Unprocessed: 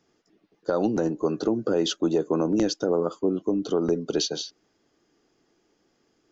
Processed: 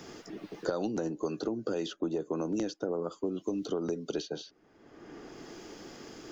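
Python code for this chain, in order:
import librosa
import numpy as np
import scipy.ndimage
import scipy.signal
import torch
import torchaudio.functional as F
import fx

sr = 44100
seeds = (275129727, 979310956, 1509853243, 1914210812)

y = fx.band_squash(x, sr, depth_pct=100)
y = y * 10.0 ** (-9.0 / 20.0)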